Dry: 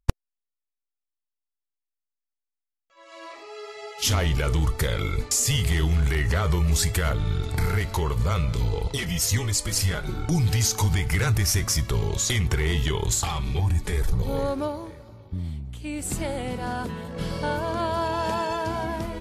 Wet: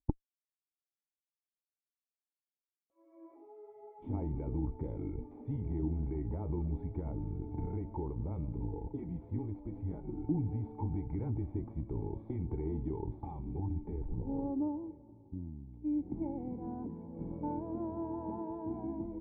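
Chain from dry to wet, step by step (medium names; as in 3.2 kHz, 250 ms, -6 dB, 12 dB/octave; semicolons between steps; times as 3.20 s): Chebyshev shaper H 2 -9 dB, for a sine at -7 dBFS; cascade formant filter u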